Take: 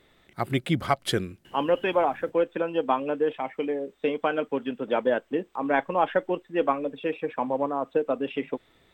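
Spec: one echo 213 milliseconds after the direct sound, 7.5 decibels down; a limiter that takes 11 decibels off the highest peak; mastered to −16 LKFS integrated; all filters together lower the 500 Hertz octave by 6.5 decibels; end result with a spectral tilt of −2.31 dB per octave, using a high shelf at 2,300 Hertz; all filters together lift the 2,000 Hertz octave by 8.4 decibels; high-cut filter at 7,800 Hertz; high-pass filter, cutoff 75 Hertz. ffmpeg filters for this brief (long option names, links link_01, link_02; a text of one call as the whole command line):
ffmpeg -i in.wav -af "highpass=75,lowpass=7800,equalizer=frequency=500:width_type=o:gain=-8.5,equalizer=frequency=2000:width_type=o:gain=8.5,highshelf=frequency=2300:gain=6,alimiter=limit=-16dB:level=0:latency=1,aecho=1:1:213:0.422,volume=13.5dB" out.wav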